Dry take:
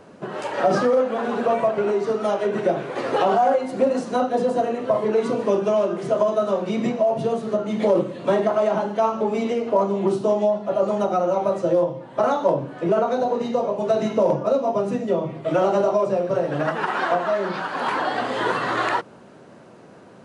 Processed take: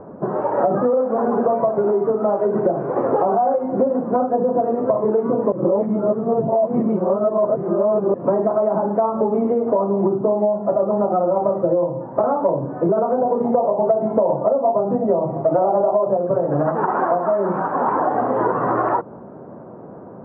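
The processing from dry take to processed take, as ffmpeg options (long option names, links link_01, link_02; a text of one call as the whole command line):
ffmpeg -i in.wav -filter_complex "[0:a]asettb=1/sr,asplit=3[link_01][link_02][link_03];[link_01]atrim=end=13.444[link_04];[link_02]atrim=start=13.44:end=16.17,asetpts=PTS-STARTPTS,afade=type=in:duration=0.004:curve=qsin,afade=type=out:start_time=2.726:duration=0.004:curve=qsin,equalizer=frequency=750:width_type=o:width=0.86:gain=9[link_05];[link_03]atrim=start=16.166[link_06];[link_04][link_05]acrossfade=duration=0.004:curve1=hsin:curve2=qsin[link_07];[link_07][link_06]acrossfade=duration=0.004:curve1=qsin:curve2=hsin,asplit=3[link_08][link_09][link_10];[link_08]atrim=end=5.522[link_11];[link_09]atrim=start=5.518:end=8.142,asetpts=PTS-STARTPTS,areverse[link_12];[link_10]atrim=start=8.138[link_13];[link_11][link_12]acrossfade=duration=0.004:curve1=hsin:curve2=hsin[link_14];[link_14][link_13]acrossfade=duration=0.004:curve1=hsin:curve2=hsin,lowpass=frequency=1100:width=0.5412,lowpass=frequency=1100:width=1.3066,acompressor=threshold=-24dB:ratio=6,volume=9dB" out.wav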